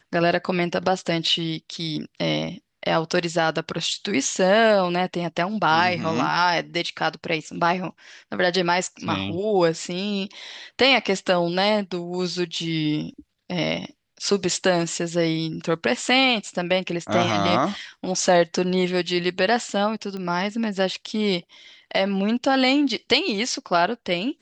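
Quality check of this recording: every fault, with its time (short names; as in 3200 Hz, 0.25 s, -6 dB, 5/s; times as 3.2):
20.17 pop -21 dBFS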